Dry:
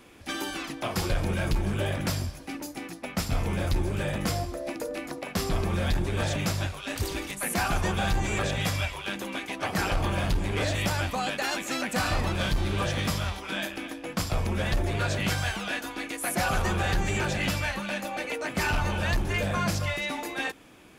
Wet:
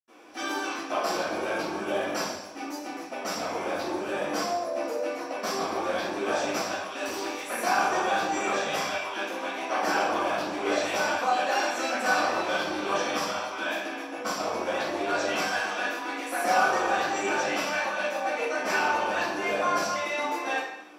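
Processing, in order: HPF 770 Hz 6 dB/oct; reverb, pre-delay 76 ms; AC-3 96 kbps 48000 Hz

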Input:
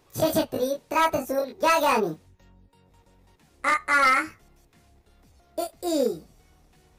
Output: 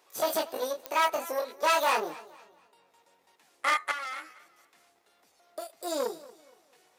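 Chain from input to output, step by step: one diode to ground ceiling -26.5 dBFS; HPF 560 Hz 12 dB/oct; 3.91–5.7 compressor 8:1, threshold -35 dBFS, peak gain reduction 15 dB; pops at 0.86, -16 dBFS; warbling echo 0.233 s, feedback 35%, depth 77 cents, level -19.5 dB

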